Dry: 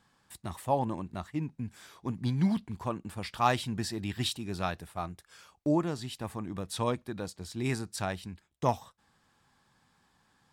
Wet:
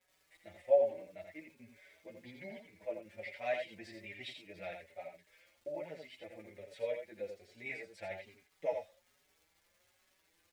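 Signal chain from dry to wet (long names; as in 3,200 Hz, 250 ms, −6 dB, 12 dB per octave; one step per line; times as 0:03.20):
pair of resonant band-passes 1,100 Hz, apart 1.9 octaves
surface crackle 360 per second −59 dBFS
multi-voice chorus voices 6, 0.25 Hz, delay 11 ms, depth 1.8 ms
on a send: single-tap delay 84 ms −6 dB
on the sum: barber-pole flanger 5 ms +1.2 Hz
level +7.5 dB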